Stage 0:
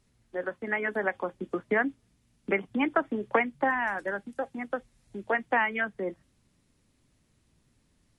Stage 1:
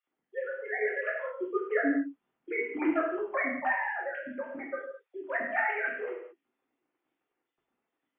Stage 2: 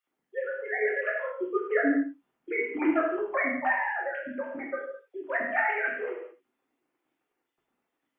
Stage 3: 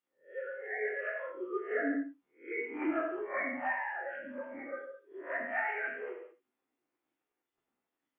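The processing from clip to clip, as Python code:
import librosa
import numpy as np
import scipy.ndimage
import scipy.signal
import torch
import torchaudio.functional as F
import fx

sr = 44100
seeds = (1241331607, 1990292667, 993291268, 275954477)

y1 = fx.sine_speech(x, sr)
y1 = fx.rev_gated(y1, sr, seeds[0], gate_ms=250, shape='falling', drr_db=-4.5)
y1 = y1 * 10.0 ** (-7.5 / 20.0)
y2 = fx.room_early_taps(y1, sr, ms=(64, 80), db=(-18.0, -16.5))
y2 = y2 * 10.0 ** (2.5 / 20.0)
y3 = fx.spec_swells(y2, sr, rise_s=0.31)
y3 = y3 * 10.0 ** (-8.5 / 20.0)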